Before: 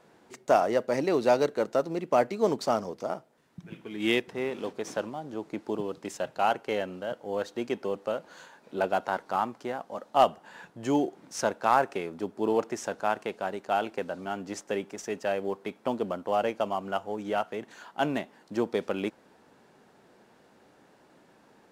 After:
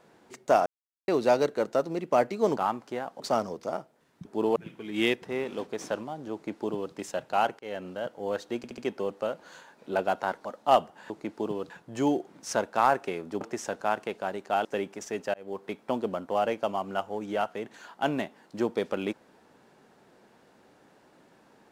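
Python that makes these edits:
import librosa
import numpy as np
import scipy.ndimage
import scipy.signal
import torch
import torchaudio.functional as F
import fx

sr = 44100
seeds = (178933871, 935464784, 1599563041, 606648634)

y = fx.edit(x, sr, fx.silence(start_s=0.66, length_s=0.42),
    fx.duplicate(start_s=5.39, length_s=0.6, to_s=10.58),
    fx.fade_in_from(start_s=6.65, length_s=0.28, floor_db=-23.5),
    fx.stutter(start_s=7.63, slice_s=0.07, count=4),
    fx.move(start_s=9.3, length_s=0.63, to_s=2.57),
    fx.move(start_s=12.29, length_s=0.31, to_s=3.62),
    fx.cut(start_s=13.84, length_s=0.78),
    fx.fade_in_span(start_s=15.31, length_s=0.31), tone=tone)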